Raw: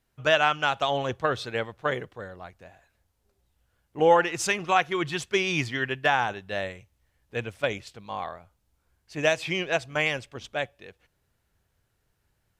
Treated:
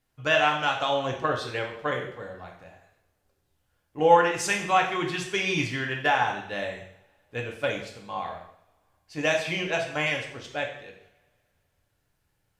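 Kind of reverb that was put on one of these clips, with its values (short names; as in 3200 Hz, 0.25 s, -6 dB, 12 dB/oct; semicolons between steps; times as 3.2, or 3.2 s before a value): two-slope reverb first 0.64 s, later 2.3 s, from -26 dB, DRR 0 dB; gain -3 dB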